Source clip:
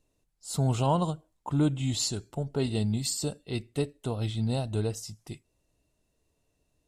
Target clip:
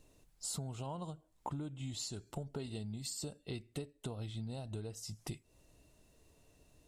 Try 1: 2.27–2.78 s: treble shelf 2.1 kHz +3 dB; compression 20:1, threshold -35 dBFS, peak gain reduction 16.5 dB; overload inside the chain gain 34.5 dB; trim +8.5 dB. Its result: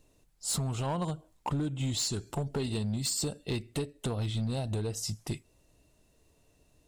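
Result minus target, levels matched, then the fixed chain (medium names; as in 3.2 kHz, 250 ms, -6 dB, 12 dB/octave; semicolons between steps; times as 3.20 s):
compression: peak gain reduction -11.5 dB
2.27–2.78 s: treble shelf 2.1 kHz +3 dB; compression 20:1, threshold -47 dBFS, peak gain reduction 27.5 dB; overload inside the chain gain 34.5 dB; trim +8.5 dB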